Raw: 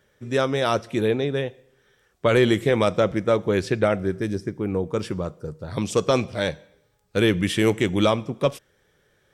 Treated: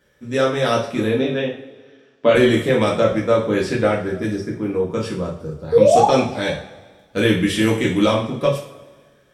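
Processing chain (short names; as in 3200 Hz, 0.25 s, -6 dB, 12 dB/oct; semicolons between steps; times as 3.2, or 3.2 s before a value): 1.17–2.35 speaker cabinet 170–5900 Hz, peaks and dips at 260 Hz +7 dB, 630 Hz +4 dB, 2800 Hz +4 dB; 5.72–6.06 painted sound rise 440–890 Hz -15 dBFS; two-slope reverb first 0.41 s, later 1.7 s, from -18 dB, DRR -3.5 dB; gain -1.5 dB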